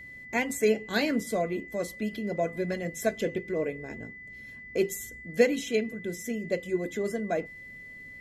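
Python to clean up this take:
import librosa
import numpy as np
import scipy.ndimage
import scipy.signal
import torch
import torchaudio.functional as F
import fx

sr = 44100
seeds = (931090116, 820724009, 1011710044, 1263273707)

y = fx.notch(x, sr, hz=2000.0, q=30.0)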